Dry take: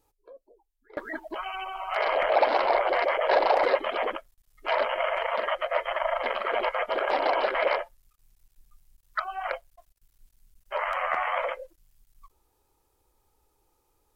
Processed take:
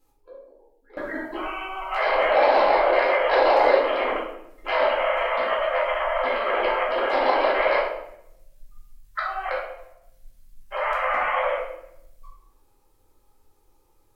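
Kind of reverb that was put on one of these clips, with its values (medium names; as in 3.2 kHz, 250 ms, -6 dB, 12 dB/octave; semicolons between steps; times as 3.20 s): simulated room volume 220 m³, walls mixed, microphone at 2.1 m; trim -2.5 dB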